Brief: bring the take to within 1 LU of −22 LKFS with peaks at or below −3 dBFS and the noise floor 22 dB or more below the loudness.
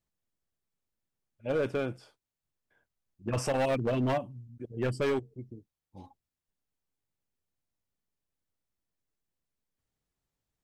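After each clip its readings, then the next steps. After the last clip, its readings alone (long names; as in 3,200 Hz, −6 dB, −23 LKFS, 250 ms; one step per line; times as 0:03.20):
share of clipped samples 1.2%; peaks flattened at −24.0 dBFS; integrated loudness −31.5 LKFS; sample peak −24.0 dBFS; target loudness −22.0 LKFS
→ clipped peaks rebuilt −24 dBFS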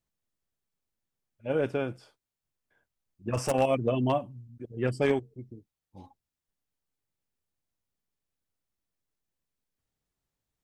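share of clipped samples 0.0%; integrated loudness −29.0 LKFS; sample peak −15.0 dBFS; target loudness −22.0 LKFS
→ level +7 dB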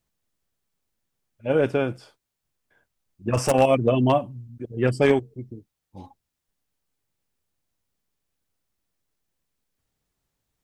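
integrated loudness −22.0 LKFS; sample peak −8.0 dBFS; background noise floor −82 dBFS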